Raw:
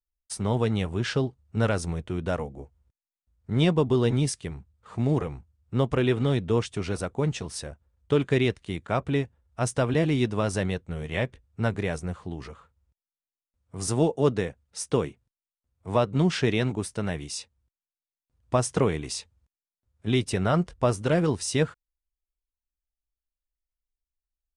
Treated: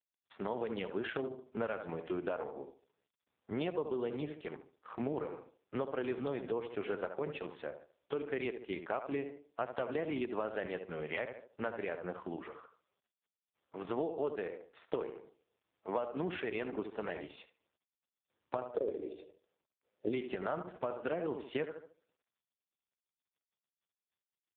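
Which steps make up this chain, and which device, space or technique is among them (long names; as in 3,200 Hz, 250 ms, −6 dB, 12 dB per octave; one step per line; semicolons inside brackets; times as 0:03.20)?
0:18.63–0:20.13: drawn EQ curve 190 Hz 0 dB, 360 Hz +9 dB, 580 Hz +12 dB, 860 Hz −17 dB, 1,300 Hz −10 dB, 2,300 Hz −11 dB, 7,700 Hz +3 dB
tape delay 73 ms, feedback 35%, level −8.5 dB, low-pass 1,800 Hz
voicemail (band-pass filter 370–3,000 Hz; downward compressor 8 to 1, threshold −33 dBFS, peak gain reduction 20.5 dB; level +1.5 dB; AMR narrowband 4.75 kbit/s 8,000 Hz)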